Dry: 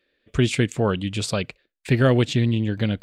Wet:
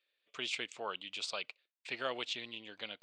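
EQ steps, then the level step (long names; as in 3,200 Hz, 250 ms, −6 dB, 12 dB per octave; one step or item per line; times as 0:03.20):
high-pass filter 1,200 Hz 12 dB per octave
high-frequency loss of the air 130 metres
parametric band 1,700 Hz −10.5 dB 0.66 octaves
−3.5 dB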